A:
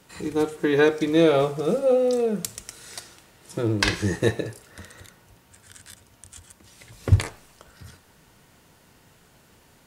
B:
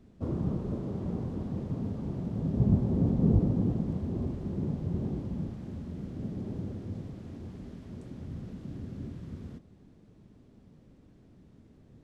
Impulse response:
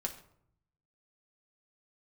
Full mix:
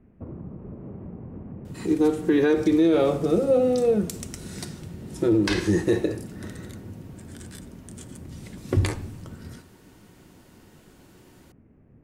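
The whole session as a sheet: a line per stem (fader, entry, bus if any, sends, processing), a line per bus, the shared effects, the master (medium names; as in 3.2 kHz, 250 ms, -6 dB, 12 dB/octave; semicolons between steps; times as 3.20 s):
-5.0 dB, 1.65 s, send -4 dB, peaking EQ 320 Hz +11 dB 0.68 oct
+1.0 dB, 0.00 s, no send, steep low-pass 2.6 kHz 48 dB/octave; compression 6:1, threshold -36 dBFS, peak gain reduction 17 dB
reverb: on, RT60 0.65 s, pre-delay 5 ms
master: peak limiter -12 dBFS, peak gain reduction 9.5 dB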